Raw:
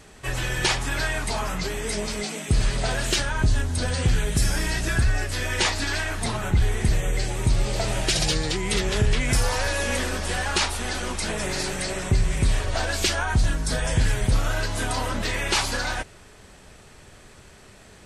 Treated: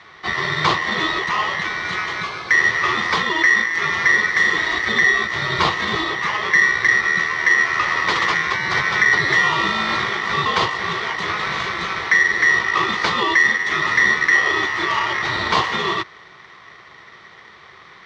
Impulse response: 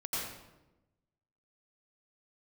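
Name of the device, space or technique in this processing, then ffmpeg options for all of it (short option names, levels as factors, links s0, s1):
ring modulator pedal into a guitar cabinet: -af "aeval=exprs='val(0)*sgn(sin(2*PI*1900*n/s))':c=same,highpass=85,equalizer=f=260:t=q:w=4:g=-10,equalizer=f=370:t=q:w=4:g=4,equalizer=f=600:t=q:w=4:g=-5,equalizer=f=1100:t=q:w=4:g=9,equalizer=f=1600:t=q:w=4:g=-7,equalizer=f=2600:t=q:w=4:g=-9,lowpass=f=3700:w=0.5412,lowpass=f=3700:w=1.3066,volume=2.51"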